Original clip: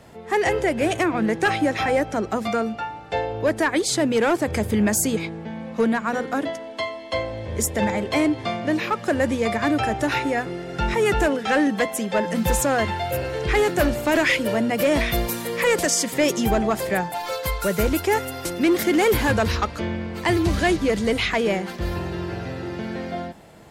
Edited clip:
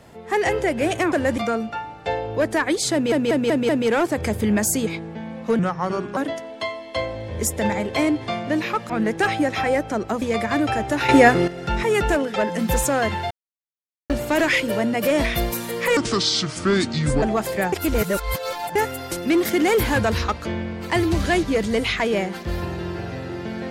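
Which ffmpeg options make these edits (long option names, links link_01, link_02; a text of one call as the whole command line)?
ffmpeg -i in.wav -filter_complex "[0:a]asplit=20[link_01][link_02][link_03][link_04][link_05][link_06][link_07][link_08][link_09][link_10][link_11][link_12][link_13][link_14][link_15][link_16][link_17][link_18][link_19][link_20];[link_01]atrim=end=1.122[link_21];[link_02]atrim=start=9.068:end=9.332[link_22];[link_03]atrim=start=2.438:end=4.182[link_23];[link_04]atrim=start=3.988:end=4.182[link_24];[link_05]atrim=start=3.988:end=4.182[link_25];[link_06]atrim=start=3.988:end=4.182[link_26];[link_07]atrim=start=3.988:end=5.894[link_27];[link_08]atrim=start=5.89:end=6.34,asetpts=PTS-STARTPTS,asetrate=34398,aresample=44100,atrim=end_sample=25442,asetpts=PTS-STARTPTS[link_28];[link_09]atrim=start=6.336:end=9.072[link_29];[link_10]atrim=start=1.118:end=2.442[link_30];[link_11]atrim=start=9.328:end=10.202[link_31];[link_12]atrim=start=10.198:end=10.592,asetpts=PTS-STARTPTS,volume=11.5dB[link_32];[link_13]atrim=start=10.588:end=11.472[link_33];[link_14]atrim=start=12.118:end=13.07,asetpts=PTS-STARTPTS,afade=type=out:start_time=0.948:duration=0.004:curve=hsin[link_34];[link_15]atrim=start=13.07:end=13.86,asetpts=PTS-STARTPTS,volume=0[link_35];[link_16]atrim=start=13.86:end=15.734,asetpts=PTS-STARTPTS,afade=type=in:duration=0.004:curve=hsin[link_36];[link_17]atrim=start=15.73:end=16.56,asetpts=PTS-STARTPTS,asetrate=29106,aresample=44100,atrim=end_sample=55459,asetpts=PTS-STARTPTS[link_37];[link_18]atrim=start=16.556:end=17.062[link_38];[link_19]atrim=start=17.058:end=18.092,asetpts=PTS-STARTPTS,areverse[link_39];[link_20]atrim=start=18.088[link_40];[link_21][link_22]acrossfade=duration=0.004:curve1=hsin:curve2=hsin[link_41];[link_41][link_23]acrossfade=duration=0.004:curve1=hsin:curve2=hsin[link_42];[link_42][link_24]acrossfade=duration=0.004:curve1=hsin:curve2=hsin[link_43];[link_43][link_25]acrossfade=duration=0.004:curve1=hsin:curve2=hsin[link_44];[link_44][link_26]acrossfade=duration=0.004:curve1=hsin:curve2=hsin[link_45];[link_45][link_27]acrossfade=duration=0.004:curve1=hsin:curve2=hsin[link_46];[link_46][link_28]acrossfade=duration=0.004:curve1=hsin:curve2=hsin[link_47];[link_47][link_29]acrossfade=duration=0.004:curve1=hsin:curve2=hsin[link_48];[link_48][link_30]acrossfade=duration=0.004:curve1=hsin:curve2=hsin[link_49];[link_49][link_31]acrossfade=duration=0.004:curve1=hsin:curve2=hsin[link_50];[link_50][link_32]acrossfade=duration=0.004:curve1=hsin:curve2=hsin[link_51];[link_51][link_33]acrossfade=duration=0.004:curve1=hsin:curve2=hsin[link_52];[link_34][link_35][link_36]concat=n=3:v=0:a=1[link_53];[link_52][link_53]acrossfade=duration=0.004:curve1=hsin:curve2=hsin[link_54];[link_54][link_37]acrossfade=duration=0.004:curve1=hsin:curve2=hsin[link_55];[link_55][link_38]acrossfade=duration=0.004:curve1=hsin:curve2=hsin[link_56];[link_56][link_39]acrossfade=duration=0.004:curve1=hsin:curve2=hsin[link_57];[link_57][link_40]acrossfade=duration=0.004:curve1=hsin:curve2=hsin" out.wav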